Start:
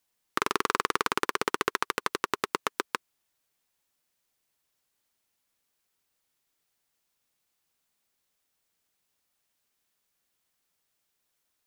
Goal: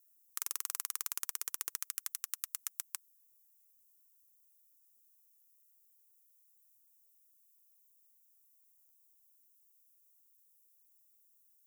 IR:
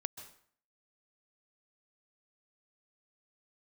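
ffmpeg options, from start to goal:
-filter_complex "[0:a]aexciter=amount=3.2:drive=6.8:freq=5.7k,asettb=1/sr,asplit=3[a][b][c];[a]atrim=end=1.814[d];[b]atrim=start=1.81:end=2.9,asetpts=PTS-STARTPTS,afade=t=in:d=0.004:c=qsin,afade=t=out:st=1.086:d=0.004:c=qsin,highpass=f=1.2k:w=0.5412,highpass=f=1.2k:w=1.3066[e];[c]atrim=start=2.896[f];[d][e]acrossfade=d=0.004:c1=hsin:c2=qsin[g];[g][f]acrossfade=d=0.004:c1=qsin:c2=hsin,aderivative,volume=-8.5dB"

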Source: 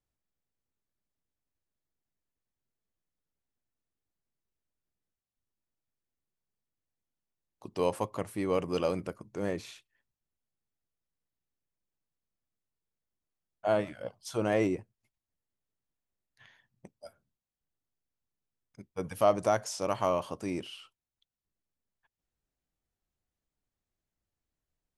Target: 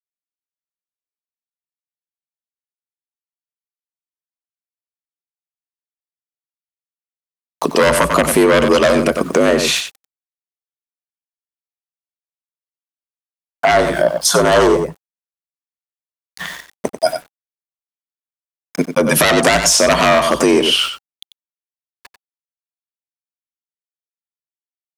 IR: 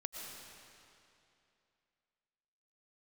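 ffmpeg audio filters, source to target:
-filter_complex "[0:a]aeval=exprs='0.266*sin(PI/2*5.01*val(0)/0.266)':c=same,afreqshift=56,asettb=1/sr,asplit=3[a][b][c];[a]atrim=end=13.714[d];[b]atrim=start=13.71:end=16.96,asetpts=PTS-STARTPTS,afade=t=in:d=0.004:c=qsin,afade=t=out:st=3.246:d=0.004:c=qsin,equalizer=f=100:t=o:w=0.67:g=7,equalizer=f=250:t=o:w=0.67:g=-7,equalizer=f=2.5k:t=o:w=0.67:g=-10[e];[c]atrim=start=16.956[f];[d][e]acrossfade=d=0.004:c1=hsin:c2=qsin[g];[g][f]acrossfade=d=0.004:c1=qsin:c2=hsin,aeval=exprs='val(0)*gte(abs(val(0)),0.00422)':c=same,lowshelf=f=220:g=-8.5,bandreject=f=800:w=12,aecho=1:1:93:0.316,acompressor=threshold=-27dB:ratio=6,alimiter=level_in=19dB:limit=-1dB:release=50:level=0:latency=1,volume=-1dB"

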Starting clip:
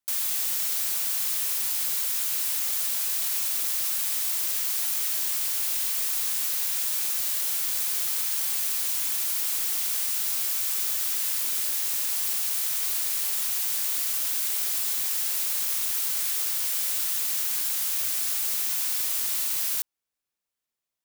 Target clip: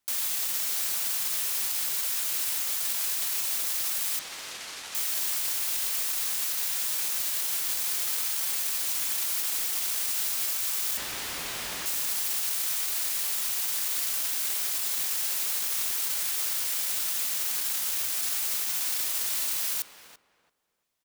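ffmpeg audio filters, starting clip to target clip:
-filter_complex "[0:a]highshelf=f=8.3k:g=-3.5,alimiter=level_in=3.5dB:limit=-24dB:level=0:latency=1,volume=-3.5dB,asettb=1/sr,asplit=3[a][b][c];[a]atrim=end=4.194[d];[b]atrim=start=4.19:end=4.95,asetpts=PTS-STARTPTS,afade=t=in:d=0.004:c=qsin,afade=t=out:st=0.756:d=0.004:c=qsin,adynamicsmooth=sensitivity=3:basefreq=4.8k[e];[c]atrim=start=4.946[f];[d][e]acrossfade=d=0.004:c1=hsin:c2=qsin[g];[g][f]acrossfade=d=0.004:c1=qsin:c2=hsin,asettb=1/sr,asplit=3[h][i][j];[h]atrim=end=10.974[k];[i]atrim=start=10.97:end=11.86,asetpts=PTS-STARTPTS,afade=t=in:d=0.004:c=qsin,afade=t=out:st=0.886:d=0.004:c=qsin,asplit=2[l][m];[m]highpass=f=720:p=1,volume=22dB,asoftclip=type=tanh:threshold=-27.5dB[n];[l][n]amix=inputs=2:normalize=0,lowpass=f=2.3k:p=1,volume=-6dB[o];[j]atrim=start=11.856[p];[k][o]acrossfade=d=0.004:c1=hsin:c2=qsin[q];[q][p]acrossfade=d=0.004:c1=qsin:c2=hsin,asplit=2[r][s];[s]adelay=338,lowpass=f=1.5k:p=1,volume=-7.5dB,asplit=2[t][u];[u]adelay=338,lowpass=f=1.5k:p=1,volume=0.25,asplit=2[v][w];[w]adelay=338,lowpass=f=1.5k:p=1,volume=0.25[x];[r][t][v][x]amix=inputs=4:normalize=0,volume=8dB"

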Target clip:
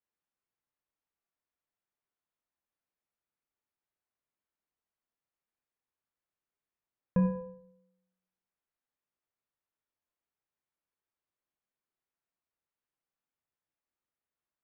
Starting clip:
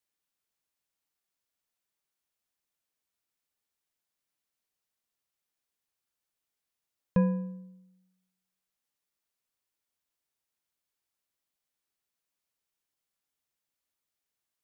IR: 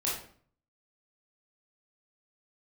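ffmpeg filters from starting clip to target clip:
-filter_complex "[0:a]lowpass=1.9k,asplit=2[a][b];[1:a]atrim=start_sample=2205[c];[b][c]afir=irnorm=-1:irlink=0,volume=-8dB[d];[a][d]amix=inputs=2:normalize=0,volume=-5.5dB"

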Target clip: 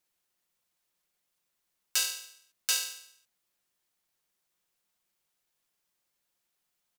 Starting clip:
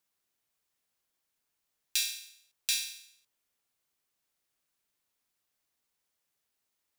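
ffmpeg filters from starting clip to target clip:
-af "aecho=1:1:5.6:0.65,aeval=exprs='val(0)*sin(2*PI*1100*n/s)':c=same,volume=3dB"

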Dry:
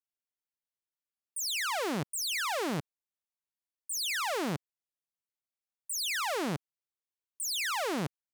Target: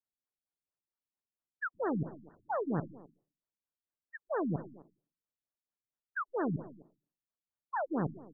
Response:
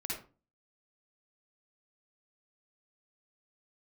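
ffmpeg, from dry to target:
-filter_complex "[0:a]asplit=2[a][b];[b]adelay=260,highpass=300,lowpass=3.4k,asoftclip=type=hard:threshold=-36dB,volume=-12dB[c];[a][c]amix=inputs=2:normalize=0,asettb=1/sr,asplit=3[d][e][f];[d]atrim=end=1.744[g];[e]atrim=start=1.74:end=2.57,asetpts=PTS-STARTPTS,afade=t=in:d=0.004:c=qsin,afade=t=out:st=0.826:d=0.004:c=qsin,acrusher=bits=4:mode=log:mix=0:aa=0.000001[h];[f]atrim=start=2.566[i];[g][h]acrossfade=d=0.004:c1=hsin:c2=qsin[j];[j][i]acrossfade=d=0.004:c1=qsin:c2=hsin,asplit=2[k][l];[1:a]atrim=start_sample=2205[m];[l][m]afir=irnorm=-1:irlink=0,volume=-13dB[n];[k][n]amix=inputs=2:normalize=0,afftfilt=real='re*lt(b*sr/1024,290*pow(1900/290,0.5+0.5*sin(2*PI*4.4*pts/sr)))':imag='im*lt(b*sr/1024,290*pow(1900/290,0.5+0.5*sin(2*PI*4.4*pts/sr)))':win_size=1024:overlap=0.75"

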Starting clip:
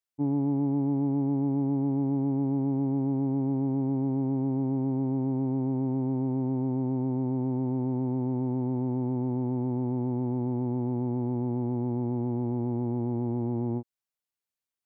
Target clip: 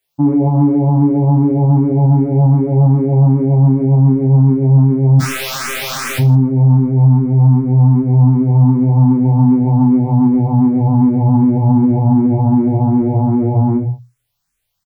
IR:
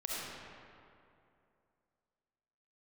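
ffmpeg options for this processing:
-filter_complex "[0:a]asettb=1/sr,asplit=3[a][b][c];[a]atrim=end=1.954[d];[b]atrim=start=1.95:end=2.43,asetpts=PTS-STARTPTS,afade=t=in:d=0.004:c=qsin,afade=t=out:st=0.476:d=0.004:c=qsin,bandreject=f=1.1k:w=12[e];[c]atrim=start=2.426[f];[d][e]acrossfade=d=0.004:c1=hsin:c2=qsin[g];[g][f]acrossfade=d=0.004:c1=qsin:c2=hsin,asubboost=boost=7.5:cutoff=110,bandreject=f=60:t=h:w=6,bandreject=f=120:t=h:w=6,aecho=1:1:7:0.34,asplit=3[h][i][j];[h]afade=t=out:st=5.19:d=0.02[k];[i]aeval=exprs='(mod(59.6*val(0)+1,2)-1)/59.6':c=same,afade=t=in:st=5.19:d=0.02,afade=t=out:st=6.18:d=0.02[l];[j]afade=t=in:st=6.18:d=0.02[m];[k][l][m]amix=inputs=3:normalize=0,aecho=1:1:20|45|76.25|115.3|164.1:0.631|0.398|0.251|0.158|0.1,alimiter=level_in=20dB:limit=-1dB:release=50:level=0:latency=1,asplit=2[n][o];[o]afreqshift=2.6[p];[n][p]amix=inputs=2:normalize=1,volume=-1dB"

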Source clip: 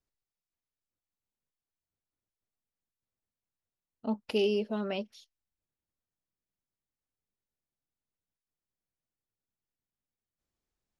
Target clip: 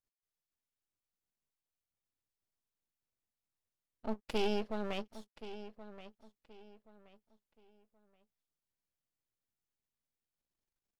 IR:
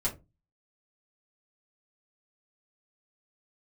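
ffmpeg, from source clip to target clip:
-filter_complex "[0:a]aeval=exprs='max(val(0),0)':c=same,asplit=2[a][b];[b]adelay=1076,lowpass=f=4.9k:p=1,volume=-13.5dB,asplit=2[c][d];[d]adelay=1076,lowpass=f=4.9k:p=1,volume=0.3,asplit=2[e][f];[f]adelay=1076,lowpass=f=4.9k:p=1,volume=0.3[g];[a][c][e][g]amix=inputs=4:normalize=0,volume=-1.5dB"

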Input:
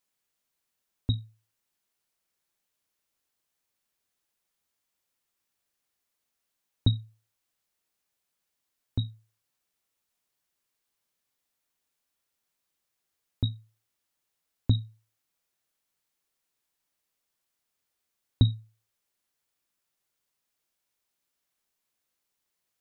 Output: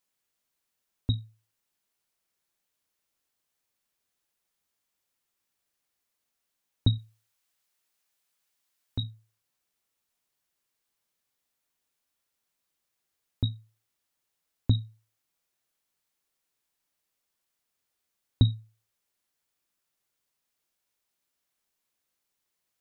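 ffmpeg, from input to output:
-filter_complex "[0:a]asettb=1/sr,asplit=3[a][b][c];[a]atrim=end=6.984[d];[b]atrim=start=6.98:end=9.03,asetpts=PTS-STARTPTS,afade=t=in:d=0.004:c=qsin,afade=t=out:st=2.046:d=0.004:c=qsin,tiltshelf=f=640:g=-4[e];[c]atrim=start=9.026[f];[d][e]acrossfade=d=0.004:c1=hsin:c2=qsin[g];[g][f]acrossfade=d=0.004:c1=qsin:c2=hsin"

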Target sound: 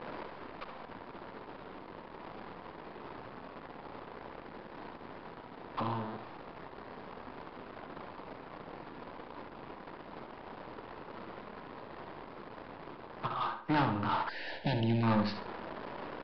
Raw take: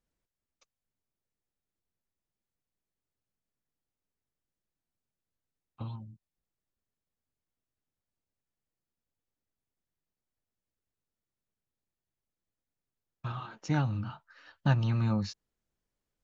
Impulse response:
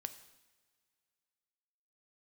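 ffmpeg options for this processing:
-filter_complex "[0:a]aeval=exprs='val(0)+0.5*0.0126*sgn(val(0))':c=same,highpass=300,asplit=2[a][b];[b]acrusher=bits=5:dc=4:mix=0:aa=0.000001,volume=-8dB[c];[a][c]amix=inputs=2:normalize=0,equalizer=f=990:w=2.9:g=6,asoftclip=type=tanh:threshold=-32dB,asplit=3[d][e][f];[d]afade=t=out:st=13.26:d=0.02[g];[e]agate=range=-20dB:threshold=-37dB:ratio=16:detection=peak,afade=t=in:st=13.26:d=0.02,afade=t=out:st=13.68:d=0.02[h];[f]afade=t=in:st=13.68:d=0.02[i];[g][h][i]amix=inputs=3:normalize=0,adynamicsmooth=sensitivity=8:basefreq=1.1k,asplit=2[j][k];[k]adelay=70,lowpass=f=4.1k:p=1,volume=-7dB,asplit=2[l][m];[m]adelay=70,lowpass=f=4.1k:p=1,volume=0.37,asplit=2[n][o];[o]adelay=70,lowpass=f=4.1k:p=1,volume=0.37,asplit=2[p][q];[q]adelay=70,lowpass=f=4.1k:p=1,volume=0.37[r];[j][l][n][p][r]amix=inputs=5:normalize=0,aresample=11025,aresample=44100,asettb=1/sr,asplit=3[s][t][u];[s]atrim=end=14.294[v];[t]atrim=start=14.29:end=15.03,asetpts=PTS-STARTPTS,afade=t=in:d=0.004:c=qsin,afade=t=out:st=0.736:d=0.004:c=qsin,asuperstop=centerf=1200:order=4:qfactor=1[w];[u]atrim=start=15.026[x];[v][w]acrossfade=d=0.004:c1=hsin:c2=qsin[y];[y][x]acrossfade=d=0.004:c1=qsin:c2=hsin,volume=8dB"

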